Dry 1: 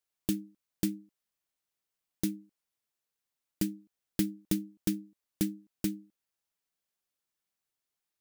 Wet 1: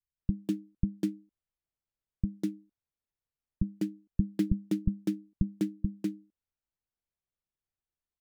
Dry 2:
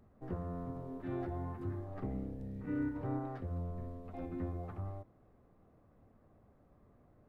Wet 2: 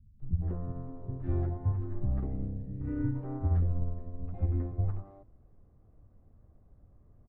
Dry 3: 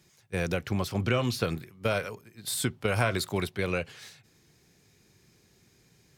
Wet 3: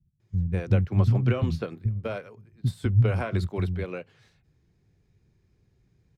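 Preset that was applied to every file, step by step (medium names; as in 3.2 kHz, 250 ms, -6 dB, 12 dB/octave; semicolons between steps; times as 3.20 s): RIAA curve playback; bands offset in time lows, highs 200 ms, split 210 Hz; upward expansion 1.5:1, over -35 dBFS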